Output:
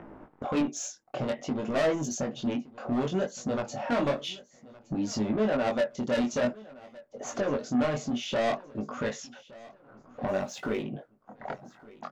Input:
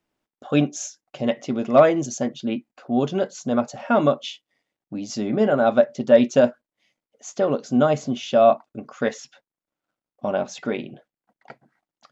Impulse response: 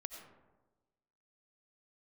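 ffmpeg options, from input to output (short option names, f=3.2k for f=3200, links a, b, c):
-filter_complex "[0:a]acrossover=split=1500[a][b];[a]acompressor=mode=upward:threshold=-18dB:ratio=2.5[c];[c][b]amix=inputs=2:normalize=0,asoftclip=type=tanh:threshold=-20.5dB,flanger=delay=18.5:depth=7:speed=0.56,asettb=1/sr,asplit=3[d][e][f];[d]atrim=end=3.694[g];[e]atrim=start=3.69:end=4.28,asetpts=PTS-STARTPTS,afade=t=in:d=0.004:c=qsin,afade=t=out:st=0.586:d=0.004:c=qsin,asplit=2[h][i];[i]adelay=28,volume=-9dB[j];[h][j]amix=inputs=2:normalize=0,atrim=end_sample=26019[k];[f]atrim=start=4.276[l];[g][k]acrossfade=d=0.004:c1=hsin:c2=qsin[m];[m][l]acrossfade=d=0.004:c1=qsin:c2=hsin,asettb=1/sr,asplit=3[n][o][p];[n]atrim=end=10.284[q];[o]atrim=start=10.28:end=10.83,asetpts=PTS-STARTPTS,afade=t=in:d=0.004:c=qsin,afade=t=out:st=0.546:d=0.004:c=qsin,aeval=exprs='sgn(val(0))*max(abs(val(0))-0.00168,0)':c=same[r];[p]atrim=start=10.826[s];[q][r]acrossfade=d=0.004:c1=hsin:c2=qsin[t];[t][s]acrossfade=d=0.004:c1=qsin:c2=hsin,aecho=1:1:1167|2334:0.0891|0.0276"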